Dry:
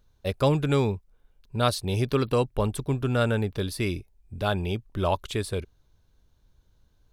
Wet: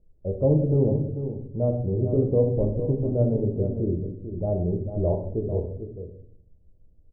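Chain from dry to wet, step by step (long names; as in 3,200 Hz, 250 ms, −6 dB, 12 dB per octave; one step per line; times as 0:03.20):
Butterworth low-pass 630 Hz 36 dB per octave
on a send: single-tap delay 444 ms −9.5 dB
on the sum: rectangular room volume 91 cubic metres, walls mixed, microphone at 0.61 metres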